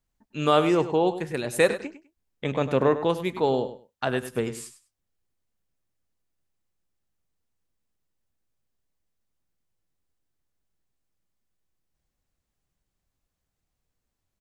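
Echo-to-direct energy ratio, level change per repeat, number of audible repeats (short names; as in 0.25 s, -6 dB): -12.5 dB, -14.5 dB, 2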